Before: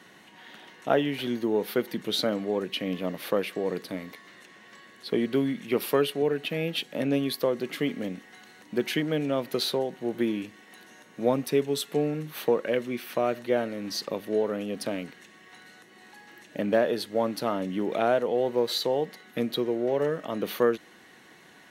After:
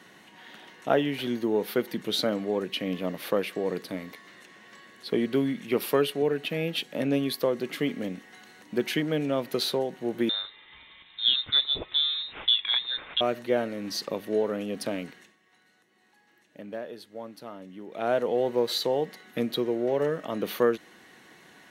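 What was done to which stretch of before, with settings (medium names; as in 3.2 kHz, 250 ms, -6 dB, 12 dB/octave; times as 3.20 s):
10.29–13.21 s: frequency inversion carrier 3.9 kHz
15.04–18.26 s: dip -13.5 dB, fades 0.32 s equal-power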